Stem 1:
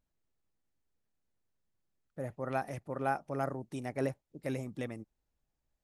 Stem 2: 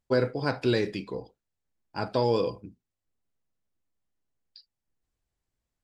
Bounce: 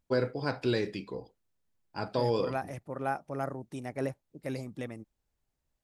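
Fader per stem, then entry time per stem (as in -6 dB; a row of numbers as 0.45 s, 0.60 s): 0.0 dB, -4.0 dB; 0.00 s, 0.00 s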